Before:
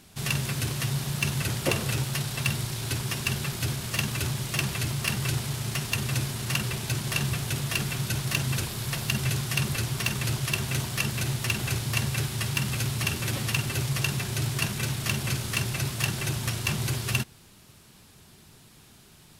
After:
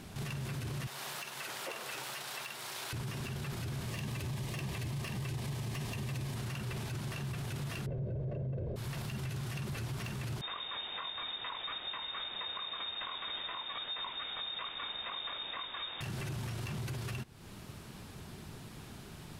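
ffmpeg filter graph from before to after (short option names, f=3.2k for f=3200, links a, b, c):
-filter_complex "[0:a]asettb=1/sr,asplit=3[a][b][c];[a]atrim=end=0.874[d];[b]atrim=start=0.87:end=2.93,asetpts=PTS-STARTPTS,afade=t=in:d=0.004:c=qsin,afade=t=out:st=2.056:d=0.004:c=qsin,highpass=690,equalizer=f=15k:w=4:g=6.5[e];[c]atrim=start=2.926[f];[d][e]acrossfade=d=0.004:c1=hsin:c2=qsin[g];[g][f]acrossfade=d=0.004:c1=qsin:c2=hsin,asettb=1/sr,asplit=3[h][i][j];[h]atrim=end=3.874[k];[i]atrim=start=3.87:end=6.36,asetpts=PTS-STARTPTS,afade=t=in:d=0.004:c=qsin,afade=t=out:st=2.486:d=0.004:c=qsin,bandreject=f=1.4k:w=5.4,acompressor=threshold=-29dB:ratio=4:attack=3.2:release=140:knee=1:detection=peak,asoftclip=type=hard:threshold=-26.5dB[l];[j]atrim=start=6.356[m];[k][l]acrossfade=d=0.004:c1=hsin:c2=qsin[n];[n][m]acrossfade=d=0.004:c1=qsin:c2=hsin,asettb=1/sr,asplit=3[o][p][q];[o]atrim=end=7.864[r];[p]atrim=start=7.86:end=8.76,asetpts=PTS-STARTPTS,afade=t=in:d=0.004:c=qsin,afade=t=out:st=0.896:d=0.004:c=qsin,lowpass=1.2k,lowshelf=f=770:t=q:w=3:g=11,aecho=1:1:1.9:0.43,atrim=end_sample=39690[s];[q]atrim=start=8.756[t];[r][s]acrossfade=d=0.004:c1=hsin:c2=qsin[u];[u][t]acrossfade=d=0.004:c1=qsin:c2=hsin,asettb=1/sr,asplit=3[v][w][x];[v]atrim=end=10.414[y];[w]atrim=start=10.41:end=16.01,asetpts=PTS-STARTPTS,afade=t=in:d=0.004:c=qsin,afade=t=out:st=5.596:d=0.004:c=qsin,flanger=delay=17:depth=6.4:speed=2.4,lowpass=f=3.2k:t=q:w=0.5098,lowpass=f=3.2k:t=q:w=0.6013,lowpass=f=3.2k:t=q:w=0.9,lowpass=f=3.2k:t=q:w=2.563,afreqshift=-3800[z];[x]atrim=start=16.006[aa];[y][z]acrossfade=d=0.004:c1=hsin:c2=qsin[ab];[ab][aa]acrossfade=d=0.004:c1=qsin:c2=hsin,acompressor=threshold=-40dB:ratio=4,highshelf=f=2.9k:g=-10,alimiter=level_in=14.5dB:limit=-24dB:level=0:latency=1:release=20,volume=-14.5dB,volume=7dB"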